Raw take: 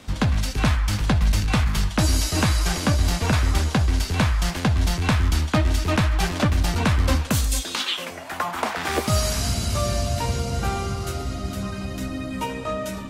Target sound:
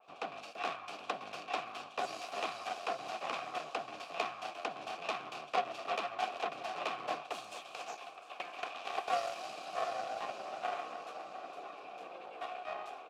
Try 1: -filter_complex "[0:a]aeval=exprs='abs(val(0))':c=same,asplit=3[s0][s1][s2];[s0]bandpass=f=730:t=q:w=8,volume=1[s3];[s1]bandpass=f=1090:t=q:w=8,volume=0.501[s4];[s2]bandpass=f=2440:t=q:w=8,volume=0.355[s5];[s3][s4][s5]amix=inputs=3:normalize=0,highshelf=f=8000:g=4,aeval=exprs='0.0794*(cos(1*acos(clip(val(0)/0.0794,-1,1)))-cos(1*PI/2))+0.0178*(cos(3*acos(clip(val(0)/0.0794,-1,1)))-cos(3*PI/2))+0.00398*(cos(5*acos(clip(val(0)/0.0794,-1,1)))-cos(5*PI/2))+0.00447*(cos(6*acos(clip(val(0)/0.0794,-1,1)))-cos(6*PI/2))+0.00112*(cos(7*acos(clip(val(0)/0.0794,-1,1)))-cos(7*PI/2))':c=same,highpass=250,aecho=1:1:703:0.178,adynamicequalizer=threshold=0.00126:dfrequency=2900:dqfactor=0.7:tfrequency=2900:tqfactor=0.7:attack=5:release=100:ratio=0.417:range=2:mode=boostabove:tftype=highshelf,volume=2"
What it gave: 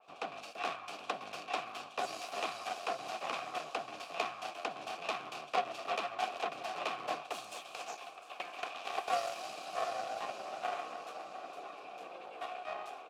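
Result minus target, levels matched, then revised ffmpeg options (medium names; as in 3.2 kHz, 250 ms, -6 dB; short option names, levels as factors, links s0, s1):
8 kHz band +2.5 dB
-filter_complex "[0:a]aeval=exprs='abs(val(0))':c=same,asplit=3[s0][s1][s2];[s0]bandpass=f=730:t=q:w=8,volume=1[s3];[s1]bandpass=f=1090:t=q:w=8,volume=0.501[s4];[s2]bandpass=f=2440:t=q:w=8,volume=0.355[s5];[s3][s4][s5]amix=inputs=3:normalize=0,highshelf=f=8000:g=-4,aeval=exprs='0.0794*(cos(1*acos(clip(val(0)/0.0794,-1,1)))-cos(1*PI/2))+0.0178*(cos(3*acos(clip(val(0)/0.0794,-1,1)))-cos(3*PI/2))+0.00398*(cos(5*acos(clip(val(0)/0.0794,-1,1)))-cos(5*PI/2))+0.00447*(cos(6*acos(clip(val(0)/0.0794,-1,1)))-cos(6*PI/2))+0.00112*(cos(7*acos(clip(val(0)/0.0794,-1,1)))-cos(7*PI/2))':c=same,highpass=250,aecho=1:1:703:0.178,adynamicequalizer=threshold=0.00126:dfrequency=2900:dqfactor=0.7:tfrequency=2900:tqfactor=0.7:attack=5:release=100:ratio=0.417:range=2:mode=boostabove:tftype=highshelf,volume=2"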